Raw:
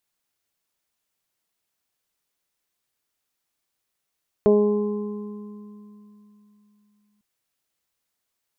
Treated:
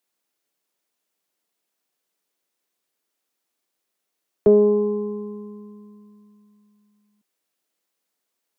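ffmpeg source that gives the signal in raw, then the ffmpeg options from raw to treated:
-f lavfi -i "aevalsrc='0.119*pow(10,-3*t/3.45)*sin(2*PI*208*t)+0.237*pow(10,-3*t/1.93)*sin(2*PI*416*t)+0.0794*pow(10,-3*t/0.6)*sin(2*PI*624*t)+0.02*pow(10,-3*t/1.77)*sin(2*PI*832*t)+0.0178*pow(10,-3*t/3.1)*sin(2*PI*1040*t)':d=2.75:s=44100"
-filter_complex "[0:a]acrossover=split=140|280|540[s0][s1][s2][s3];[s0]acrusher=bits=5:mix=0:aa=0.5[s4];[s2]acontrast=83[s5];[s3]alimiter=level_in=1.68:limit=0.0631:level=0:latency=1,volume=0.596[s6];[s4][s1][s5][s6]amix=inputs=4:normalize=0"

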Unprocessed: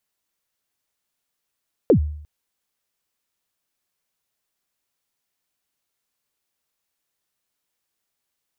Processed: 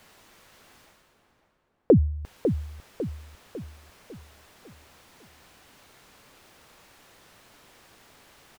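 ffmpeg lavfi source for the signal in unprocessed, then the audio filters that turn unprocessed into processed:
-f lavfi -i "aevalsrc='0.398*pow(10,-3*t/0.65)*sin(2*PI*(550*0.093/log(75/550)*(exp(log(75/550)*min(t,0.093)/0.093)-1)+75*max(t-0.093,0)))':d=0.35:s=44100"
-filter_complex "[0:a]lowpass=f=1900:p=1,areverse,acompressor=mode=upward:threshold=0.0316:ratio=2.5,areverse,asplit=2[s0][s1];[s1]adelay=550,lowpass=f=1400:p=1,volume=0.422,asplit=2[s2][s3];[s3]adelay=550,lowpass=f=1400:p=1,volume=0.48,asplit=2[s4][s5];[s5]adelay=550,lowpass=f=1400:p=1,volume=0.48,asplit=2[s6][s7];[s7]adelay=550,lowpass=f=1400:p=1,volume=0.48,asplit=2[s8][s9];[s9]adelay=550,lowpass=f=1400:p=1,volume=0.48,asplit=2[s10][s11];[s11]adelay=550,lowpass=f=1400:p=1,volume=0.48[s12];[s0][s2][s4][s6][s8][s10][s12]amix=inputs=7:normalize=0"

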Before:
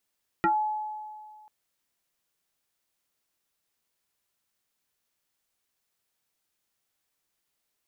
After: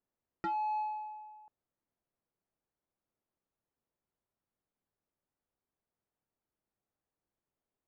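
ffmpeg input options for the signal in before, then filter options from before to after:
-f lavfi -i "aevalsrc='0.112*pow(10,-3*t/1.97)*sin(2*PI*854*t+2.3*pow(10,-3*t/0.17)*sin(2*PI*0.61*854*t))':d=1.04:s=44100"
-af "alimiter=level_in=1.88:limit=0.0631:level=0:latency=1,volume=0.531,adynamicsmooth=sensitivity=3:basefreq=960"

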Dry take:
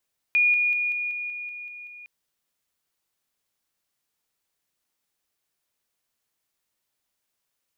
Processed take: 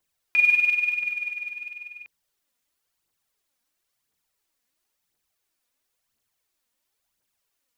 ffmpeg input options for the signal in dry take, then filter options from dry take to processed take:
-f lavfi -i "aevalsrc='pow(10,(-16.5-3*floor(t/0.19))/20)*sin(2*PI*2440*t)':d=1.71:s=44100"
-af "aphaser=in_gain=1:out_gain=1:delay=4.3:decay=0.54:speed=0.97:type=triangular"

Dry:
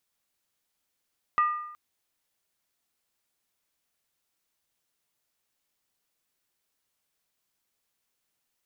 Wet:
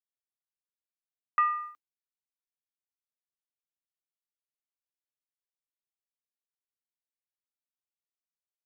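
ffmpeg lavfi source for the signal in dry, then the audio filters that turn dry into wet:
-f lavfi -i "aevalsrc='0.126*pow(10,-3*t/0.85)*sin(2*PI*1210*t)+0.0335*pow(10,-3*t/0.673)*sin(2*PI*1928.7*t)+0.00891*pow(10,-3*t/0.582)*sin(2*PI*2584.6*t)+0.00237*pow(10,-3*t/0.561)*sin(2*PI*2778.2*t)+0.000631*pow(10,-3*t/0.522)*sin(2*PI*3210.1*t)':d=0.37:s=44100"
-af "agate=range=0.0224:threshold=0.0126:ratio=3:detection=peak,highpass=170,equalizer=f=310:w=1.5:g=6.5"

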